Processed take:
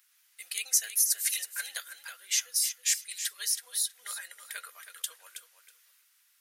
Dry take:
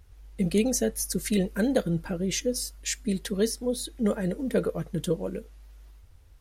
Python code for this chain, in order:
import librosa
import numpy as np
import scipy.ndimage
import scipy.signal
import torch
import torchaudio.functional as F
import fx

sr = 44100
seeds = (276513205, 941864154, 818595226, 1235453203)

y = scipy.signal.sosfilt(scipy.signal.butter(4, 1400.0, 'highpass', fs=sr, output='sos'), x)
y = fx.high_shelf(y, sr, hz=8100.0, db=11.0)
y = fx.echo_feedback(y, sr, ms=322, feedback_pct=17, wet_db=-10)